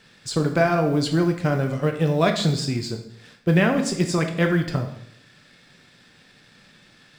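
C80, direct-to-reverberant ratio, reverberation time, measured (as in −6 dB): 12.0 dB, 4.0 dB, 0.70 s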